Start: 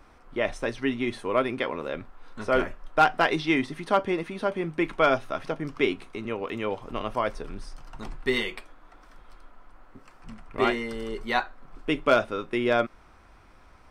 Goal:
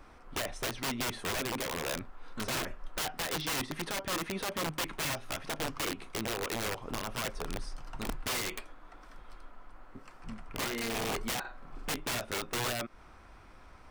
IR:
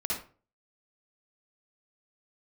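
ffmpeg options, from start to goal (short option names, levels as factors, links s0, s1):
-filter_complex "[0:a]asettb=1/sr,asplit=3[s0][s1][s2];[s0]atrim=end=11.404[s3];[s1]atrim=start=11.4:end=11.89,asetpts=PTS-STARTPTS,afade=t=in:d=0.004:c=qsin,afade=t=out:st=0.486:d=0.004:c=qsin,asplit=2[s4][s5];[s5]adelay=46,volume=0.562[s6];[s4][s6]amix=inputs=2:normalize=0,atrim=end_sample=21609[s7];[s2]atrim=start=11.886[s8];[s3][s7]acrossfade=d=0.004:c1=hsin:c2=qsin[s9];[s9][s8]acrossfade=d=0.004:c1=qsin:c2=hsin,alimiter=limit=0.0841:level=0:latency=1:release=210,aeval=exprs='(mod(25.1*val(0)+1,2)-1)/25.1':c=same"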